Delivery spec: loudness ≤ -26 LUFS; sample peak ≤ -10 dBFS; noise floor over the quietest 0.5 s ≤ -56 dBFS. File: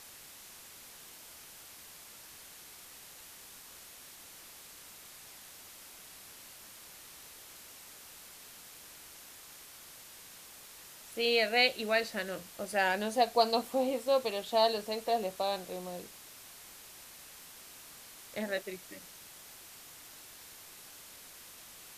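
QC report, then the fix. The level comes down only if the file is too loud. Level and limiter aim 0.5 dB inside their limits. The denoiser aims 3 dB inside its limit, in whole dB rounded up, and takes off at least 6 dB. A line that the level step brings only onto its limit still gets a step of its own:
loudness -31.5 LUFS: pass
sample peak -13.0 dBFS: pass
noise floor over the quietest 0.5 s -52 dBFS: fail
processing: noise reduction 7 dB, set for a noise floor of -52 dBFS

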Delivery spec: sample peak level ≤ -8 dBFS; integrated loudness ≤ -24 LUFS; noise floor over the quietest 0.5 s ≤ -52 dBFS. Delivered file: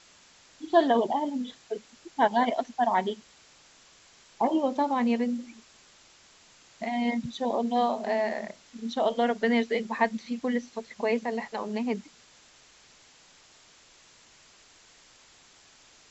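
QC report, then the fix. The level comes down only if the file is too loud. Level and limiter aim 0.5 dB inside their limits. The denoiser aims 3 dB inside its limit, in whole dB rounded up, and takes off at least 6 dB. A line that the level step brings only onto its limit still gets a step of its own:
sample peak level -10.0 dBFS: pass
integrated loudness -28.0 LUFS: pass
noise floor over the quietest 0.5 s -57 dBFS: pass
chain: none needed

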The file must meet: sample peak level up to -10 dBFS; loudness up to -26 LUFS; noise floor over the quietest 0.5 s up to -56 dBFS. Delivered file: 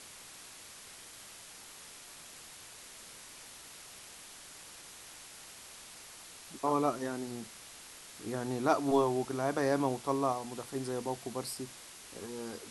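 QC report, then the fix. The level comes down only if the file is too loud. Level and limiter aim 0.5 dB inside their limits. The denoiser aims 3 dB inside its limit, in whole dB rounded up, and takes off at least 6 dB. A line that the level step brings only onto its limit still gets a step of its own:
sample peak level -14.5 dBFS: pass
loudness -34.0 LUFS: pass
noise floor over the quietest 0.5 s -51 dBFS: fail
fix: noise reduction 8 dB, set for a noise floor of -51 dBFS

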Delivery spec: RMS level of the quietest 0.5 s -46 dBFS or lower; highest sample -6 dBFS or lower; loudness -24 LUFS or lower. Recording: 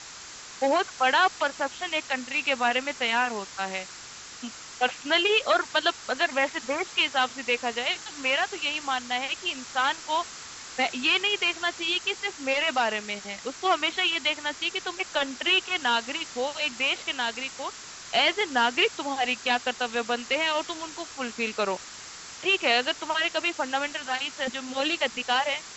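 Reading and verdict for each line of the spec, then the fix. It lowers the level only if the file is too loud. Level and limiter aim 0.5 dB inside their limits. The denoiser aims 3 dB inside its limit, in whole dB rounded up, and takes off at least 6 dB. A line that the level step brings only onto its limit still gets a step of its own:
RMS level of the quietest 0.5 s -43 dBFS: fail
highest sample -10.5 dBFS: pass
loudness -26.0 LUFS: pass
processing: noise reduction 6 dB, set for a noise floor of -43 dBFS

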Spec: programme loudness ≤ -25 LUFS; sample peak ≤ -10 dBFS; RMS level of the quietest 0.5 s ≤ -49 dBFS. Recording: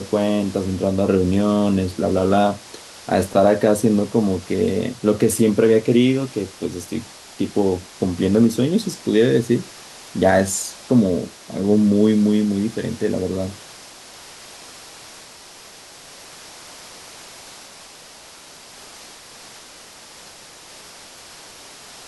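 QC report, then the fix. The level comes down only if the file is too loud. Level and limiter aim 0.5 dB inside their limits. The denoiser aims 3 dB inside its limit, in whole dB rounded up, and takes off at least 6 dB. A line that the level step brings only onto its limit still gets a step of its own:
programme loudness -19.0 LUFS: fail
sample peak -4.5 dBFS: fail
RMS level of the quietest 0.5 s -43 dBFS: fail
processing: trim -6.5 dB

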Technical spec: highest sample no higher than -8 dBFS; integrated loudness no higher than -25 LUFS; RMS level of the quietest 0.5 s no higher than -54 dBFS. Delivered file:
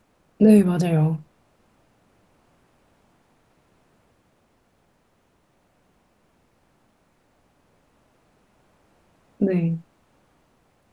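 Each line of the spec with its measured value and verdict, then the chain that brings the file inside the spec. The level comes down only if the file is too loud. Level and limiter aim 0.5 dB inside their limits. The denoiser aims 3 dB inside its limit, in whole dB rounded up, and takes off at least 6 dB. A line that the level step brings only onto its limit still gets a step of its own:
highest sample -5.0 dBFS: fail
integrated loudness -20.0 LUFS: fail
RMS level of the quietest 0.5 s -65 dBFS: pass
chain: trim -5.5 dB

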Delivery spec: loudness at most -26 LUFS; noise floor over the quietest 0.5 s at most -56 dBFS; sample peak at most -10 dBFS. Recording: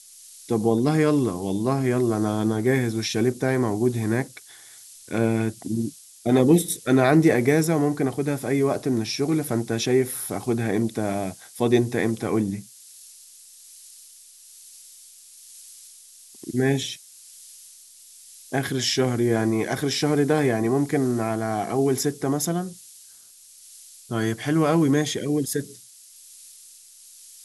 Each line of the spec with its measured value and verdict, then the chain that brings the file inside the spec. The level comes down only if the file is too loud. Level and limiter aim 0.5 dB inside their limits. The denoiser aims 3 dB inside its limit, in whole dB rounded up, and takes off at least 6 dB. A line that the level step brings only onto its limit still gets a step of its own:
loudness -23.0 LUFS: fail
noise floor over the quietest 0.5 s -49 dBFS: fail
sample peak -5.5 dBFS: fail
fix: noise reduction 7 dB, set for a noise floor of -49 dBFS; trim -3.5 dB; peak limiter -10.5 dBFS

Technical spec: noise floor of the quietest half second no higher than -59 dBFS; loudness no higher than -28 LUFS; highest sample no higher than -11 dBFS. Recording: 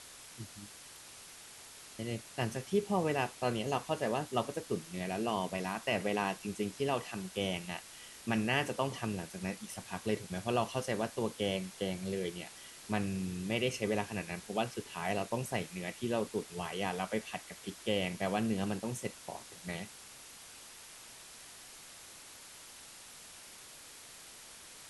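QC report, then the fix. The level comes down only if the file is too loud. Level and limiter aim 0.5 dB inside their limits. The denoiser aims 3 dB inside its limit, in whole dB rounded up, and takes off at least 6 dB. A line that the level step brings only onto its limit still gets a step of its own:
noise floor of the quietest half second -52 dBFS: fail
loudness -36.0 LUFS: pass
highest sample -16.5 dBFS: pass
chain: noise reduction 10 dB, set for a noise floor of -52 dBFS

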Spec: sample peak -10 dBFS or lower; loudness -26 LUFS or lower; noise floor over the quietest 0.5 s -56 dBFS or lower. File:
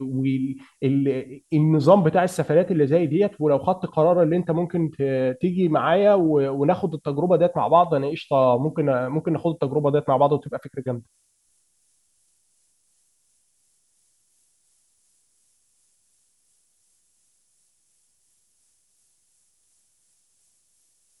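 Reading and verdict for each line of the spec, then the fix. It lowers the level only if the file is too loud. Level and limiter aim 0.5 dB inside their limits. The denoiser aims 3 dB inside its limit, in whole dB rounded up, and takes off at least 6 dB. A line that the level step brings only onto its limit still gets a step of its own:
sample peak -3.5 dBFS: fail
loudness -21.0 LUFS: fail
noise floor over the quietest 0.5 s -66 dBFS: pass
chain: trim -5.5 dB; peak limiter -10.5 dBFS

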